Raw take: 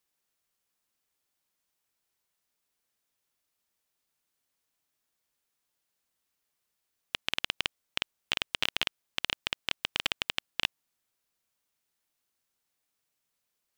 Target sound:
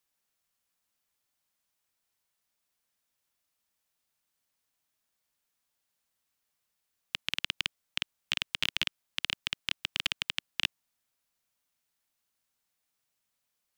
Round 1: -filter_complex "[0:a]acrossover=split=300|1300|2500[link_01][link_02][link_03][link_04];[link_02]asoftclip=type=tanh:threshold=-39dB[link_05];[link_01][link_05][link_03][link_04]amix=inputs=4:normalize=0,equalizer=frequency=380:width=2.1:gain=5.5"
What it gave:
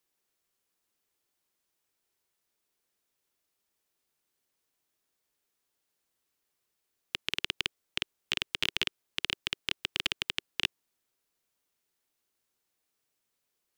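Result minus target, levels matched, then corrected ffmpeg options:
500 Hz band +5.0 dB
-filter_complex "[0:a]acrossover=split=300|1300|2500[link_01][link_02][link_03][link_04];[link_02]asoftclip=type=tanh:threshold=-39dB[link_05];[link_01][link_05][link_03][link_04]amix=inputs=4:normalize=0,equalizer=frequency=380:width=2.1:gain=-4.5"

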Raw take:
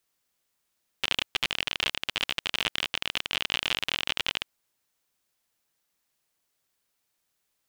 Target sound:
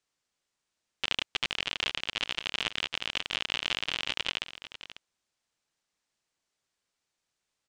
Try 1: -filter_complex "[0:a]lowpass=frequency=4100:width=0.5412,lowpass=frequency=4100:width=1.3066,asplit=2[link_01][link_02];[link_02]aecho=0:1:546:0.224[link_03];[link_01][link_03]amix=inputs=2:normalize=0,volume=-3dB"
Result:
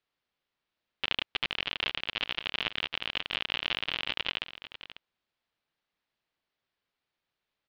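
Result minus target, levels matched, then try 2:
8,000 Hz band −15.5 dB
-filter_complex "[0:a]lowpass=frequency=8200:width=0.5412,lowpass=frequency=8200:width=1.3066,asplit=2[link_01][link_02];[link_02]aecho=0:1:546:0.224[link_03];[link_01][link_03]amix=inputs=2:normalize=0,volume=-3dB"

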